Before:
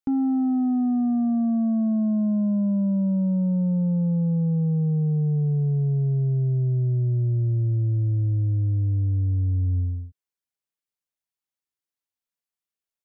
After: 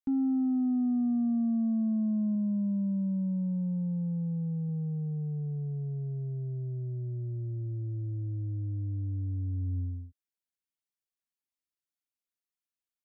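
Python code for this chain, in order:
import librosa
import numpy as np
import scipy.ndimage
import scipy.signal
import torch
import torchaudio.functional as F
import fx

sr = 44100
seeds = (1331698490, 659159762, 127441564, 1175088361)

y = fx.air_absorb(x, sr, metres=420.0, at=(2.35, 4.69))
y = fx.rider(y, sr, range_db=10, speed_s=0.5)
y = fx.graphic_eq_10(y, sr, hz=(125, 250, 500, 1000), db=(-6, 5, -6, -4))
y = y * 10.0 ** (-7.5 / 20.0)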